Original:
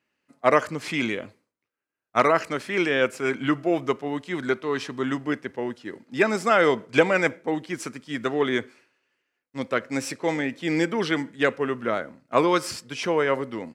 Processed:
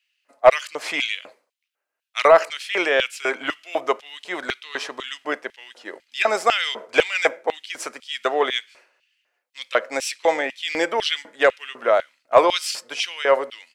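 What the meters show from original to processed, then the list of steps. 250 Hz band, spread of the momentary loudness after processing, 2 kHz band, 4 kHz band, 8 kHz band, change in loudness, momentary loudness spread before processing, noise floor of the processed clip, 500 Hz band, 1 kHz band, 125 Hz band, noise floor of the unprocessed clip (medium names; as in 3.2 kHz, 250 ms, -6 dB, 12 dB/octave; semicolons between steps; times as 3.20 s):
-9.5 dB, 14 LU, +3.0 dB, +9.0 dB, +5.0 dB, +3.0 dB, 10 LU, -81 dBFS, +3.5 dB, +3.5 dB, under -15 dB, -85 dBFS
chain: LFO high-pass square 2 Hz 620–3000 Hz; saturation -4 dBFS, distortion -22 dB; trim +4 dB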